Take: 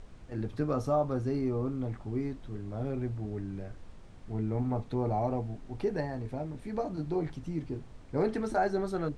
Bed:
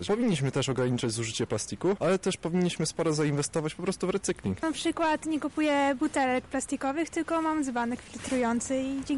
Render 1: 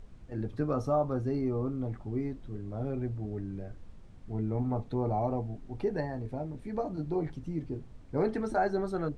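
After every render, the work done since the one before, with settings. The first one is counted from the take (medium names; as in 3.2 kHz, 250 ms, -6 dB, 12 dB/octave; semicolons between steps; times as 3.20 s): noise reduction 6 dB, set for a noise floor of -50 dBFS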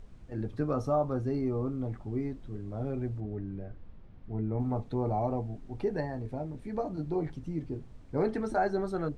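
3.20–4.60 s: distance through air 230 m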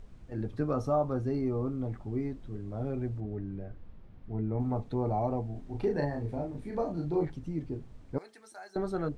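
5.52–7.25 s: doubling 35 ms -3 dB; 8.18–8.76 s: differentiator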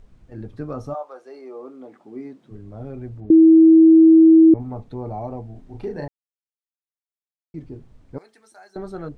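0.93–2.50 s: high-pass 640 Hz -> 160 Hz 24 dB/octave; 3.30–4.54 s: bleep 323 Hz -6.5 dBFS; 6.08–7.54 s: mute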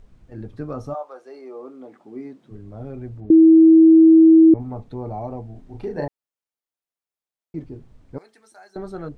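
5.97–7.64 s: peaking EQ 600 Hz +6 dB 2.9 oct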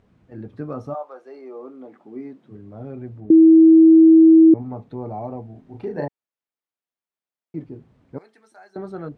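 Bessel high-pass 170 Hz, order 2; tone controls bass +4 dB, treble -9 dB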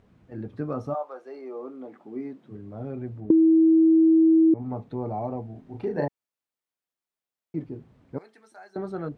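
compression, threshold -16 dBFS, peak gain reduction 7.5 dB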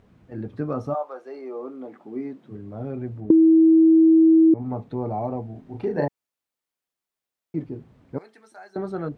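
trim +3 dB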